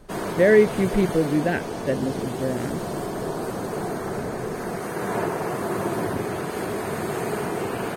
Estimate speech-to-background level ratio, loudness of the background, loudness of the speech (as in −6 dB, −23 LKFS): 6.0 dB, −28.5 LKFS, −22.5 LKFS